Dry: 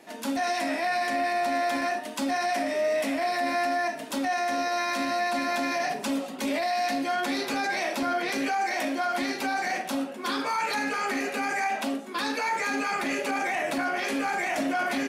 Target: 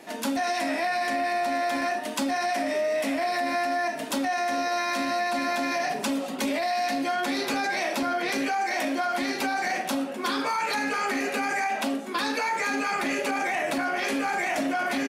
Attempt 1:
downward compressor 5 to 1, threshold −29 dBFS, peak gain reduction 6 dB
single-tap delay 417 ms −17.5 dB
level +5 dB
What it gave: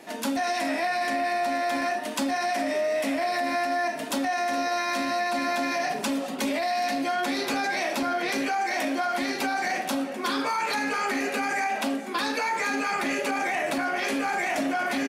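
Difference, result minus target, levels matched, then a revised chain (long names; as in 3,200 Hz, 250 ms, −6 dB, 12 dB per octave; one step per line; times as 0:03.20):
echo-to-direct +11.5 dB
downward compressor 5 to 1, threshold −29 dBFS, peak gain reduction 6 dB
single-tap delay 417 ms −29 dB
level +5 dB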